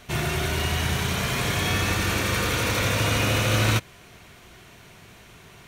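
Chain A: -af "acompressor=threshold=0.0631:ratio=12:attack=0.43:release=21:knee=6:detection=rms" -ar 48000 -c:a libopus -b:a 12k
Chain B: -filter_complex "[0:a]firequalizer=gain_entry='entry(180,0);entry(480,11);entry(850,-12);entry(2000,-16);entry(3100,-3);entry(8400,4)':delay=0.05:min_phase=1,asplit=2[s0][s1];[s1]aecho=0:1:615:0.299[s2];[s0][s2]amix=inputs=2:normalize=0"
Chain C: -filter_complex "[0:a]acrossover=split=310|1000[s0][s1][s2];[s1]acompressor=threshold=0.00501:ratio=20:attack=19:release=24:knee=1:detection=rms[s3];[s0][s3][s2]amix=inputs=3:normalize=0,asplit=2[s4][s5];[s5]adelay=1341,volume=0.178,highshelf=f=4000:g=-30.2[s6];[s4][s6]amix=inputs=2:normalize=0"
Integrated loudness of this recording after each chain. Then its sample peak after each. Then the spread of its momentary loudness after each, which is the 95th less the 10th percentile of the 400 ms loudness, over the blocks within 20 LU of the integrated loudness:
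-30.5 LUFS, -23.0 LUFS, -24.0 LUFS; -18.5 dBFS, -8.0 dBFS, -11.0 dBFS; 19 LU, 11 LU, 18 LU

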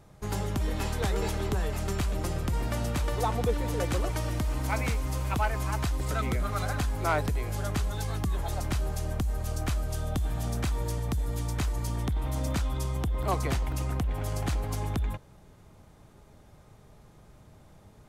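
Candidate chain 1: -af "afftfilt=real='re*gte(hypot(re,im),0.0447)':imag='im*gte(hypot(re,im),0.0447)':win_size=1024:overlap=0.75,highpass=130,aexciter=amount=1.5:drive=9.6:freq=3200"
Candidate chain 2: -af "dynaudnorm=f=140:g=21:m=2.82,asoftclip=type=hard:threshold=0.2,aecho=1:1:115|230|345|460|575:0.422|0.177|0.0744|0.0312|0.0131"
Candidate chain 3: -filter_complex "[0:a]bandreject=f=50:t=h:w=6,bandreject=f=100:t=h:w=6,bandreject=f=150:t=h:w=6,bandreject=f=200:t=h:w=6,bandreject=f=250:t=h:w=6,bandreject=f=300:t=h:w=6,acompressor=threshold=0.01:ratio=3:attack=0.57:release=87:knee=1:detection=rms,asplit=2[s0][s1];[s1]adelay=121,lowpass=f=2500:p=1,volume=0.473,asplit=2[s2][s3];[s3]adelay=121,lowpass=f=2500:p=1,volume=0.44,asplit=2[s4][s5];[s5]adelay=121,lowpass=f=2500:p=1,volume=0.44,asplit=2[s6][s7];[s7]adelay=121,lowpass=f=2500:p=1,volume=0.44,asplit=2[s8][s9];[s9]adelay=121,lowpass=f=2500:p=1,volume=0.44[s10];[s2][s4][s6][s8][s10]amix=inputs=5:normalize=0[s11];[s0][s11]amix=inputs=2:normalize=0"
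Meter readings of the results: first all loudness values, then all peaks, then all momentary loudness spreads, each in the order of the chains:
-35.5 LUFS, -21.5 LUFS, -41.5 LUFS; -16.5 dBFS, -9.5 dBFS, -28.5 dBFS; 7 LU, 4 LU, 15 LU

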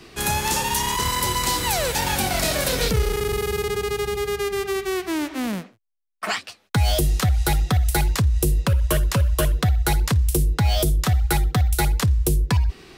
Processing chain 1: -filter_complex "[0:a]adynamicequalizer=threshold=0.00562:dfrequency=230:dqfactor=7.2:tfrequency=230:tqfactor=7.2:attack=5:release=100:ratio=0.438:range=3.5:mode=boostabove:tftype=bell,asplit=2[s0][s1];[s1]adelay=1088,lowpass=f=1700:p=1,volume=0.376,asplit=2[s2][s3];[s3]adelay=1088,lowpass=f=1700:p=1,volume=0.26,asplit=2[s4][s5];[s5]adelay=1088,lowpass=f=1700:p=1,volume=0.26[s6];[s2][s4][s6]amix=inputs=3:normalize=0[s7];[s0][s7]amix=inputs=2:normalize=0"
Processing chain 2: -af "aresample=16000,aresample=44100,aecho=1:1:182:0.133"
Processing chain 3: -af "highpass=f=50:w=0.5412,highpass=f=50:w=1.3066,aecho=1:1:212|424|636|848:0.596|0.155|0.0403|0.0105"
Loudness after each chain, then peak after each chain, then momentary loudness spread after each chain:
-21.5 LUFS, -22.5 LUFS, -21.0 LUFS; -8.5 dBFS, -10.0 dBFS, -6.0 dBFS; 4 LU, 5 LU, 5 LU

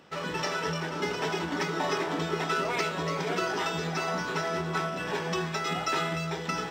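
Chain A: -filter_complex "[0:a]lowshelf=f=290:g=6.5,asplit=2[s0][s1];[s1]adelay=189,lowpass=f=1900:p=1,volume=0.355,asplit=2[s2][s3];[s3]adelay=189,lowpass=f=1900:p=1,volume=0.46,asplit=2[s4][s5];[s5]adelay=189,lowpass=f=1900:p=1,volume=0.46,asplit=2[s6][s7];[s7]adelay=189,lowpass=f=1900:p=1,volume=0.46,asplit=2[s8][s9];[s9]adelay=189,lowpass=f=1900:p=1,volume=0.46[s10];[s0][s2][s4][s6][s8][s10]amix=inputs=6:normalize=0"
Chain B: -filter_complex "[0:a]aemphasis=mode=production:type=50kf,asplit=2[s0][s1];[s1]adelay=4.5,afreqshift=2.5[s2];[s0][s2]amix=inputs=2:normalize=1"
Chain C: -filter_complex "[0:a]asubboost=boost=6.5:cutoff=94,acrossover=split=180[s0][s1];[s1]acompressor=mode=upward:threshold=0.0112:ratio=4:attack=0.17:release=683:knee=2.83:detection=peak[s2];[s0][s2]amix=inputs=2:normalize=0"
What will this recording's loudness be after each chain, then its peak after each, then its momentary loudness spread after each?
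-28.0 LUFS, -31.5 LUFS, -30.5 LUFS; -14.0 dBFS, -17.0 dBFS, -15.0 dBFS; 2 LU, 4 LU, 3 LU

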